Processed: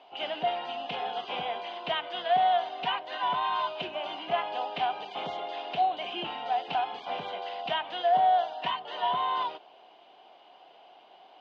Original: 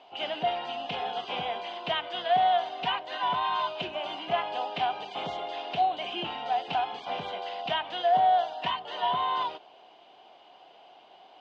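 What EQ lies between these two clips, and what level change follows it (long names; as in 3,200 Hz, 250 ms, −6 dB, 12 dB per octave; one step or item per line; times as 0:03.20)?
high-pass filter 190 Hz 6 dB per octave
high-frequency loss of the air 76 metres
0.0 dB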